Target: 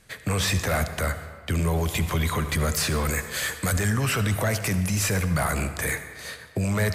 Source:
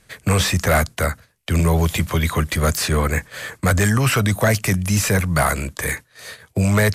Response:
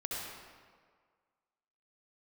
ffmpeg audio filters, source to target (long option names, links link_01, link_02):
-filter_complex "[0:a]asettb=1/sr,asplit=3[link_01][link_02][link_03];[link_01]atrim=end=3.054[link_04];[link_02]atrim=start=3.05:end=3.79,asetpts=PTS-STARTPTS,afade=type=in:duration=0.004:curve=qsin,afade=type=out:start_time=0.736:duration=0.004:curve=qsin,highshelf=frequency=3200:gain=11.5[link_05];[link_03]atrim=start=3.786[link_06];[link_04][link_05]acrossfade=duration=0.004:curve1=hsin:curve2=qsin[link_07];[link_07][link_06]acrossfade=duration=0.004:curve1=qsin:curve2=hsin,alimiter=limit=-16dB:level=0:latency=1:release=16,asplit=2[link_08][link_09];[1:a]atrim=start_sample=2205[link_10];[link_09][link_10]afir=irnorm=-1:irlink=0,volume=-9.5dB[link_11];[link_08][link_11]amix=inputs=2:normalize=0,volume=-3dB"